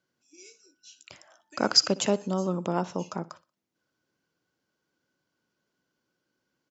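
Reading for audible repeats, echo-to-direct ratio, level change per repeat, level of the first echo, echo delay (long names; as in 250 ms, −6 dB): 2, −19.5 dB, −9.5 dB, −20.0 dB, 61 ms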